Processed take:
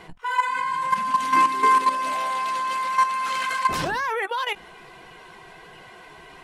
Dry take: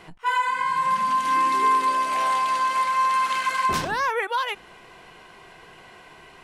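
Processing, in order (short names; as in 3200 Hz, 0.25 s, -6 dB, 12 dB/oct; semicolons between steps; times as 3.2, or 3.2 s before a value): bin magnitudes rounded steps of 15 dB; level quantiser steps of 10 dB; gain +4.5 dB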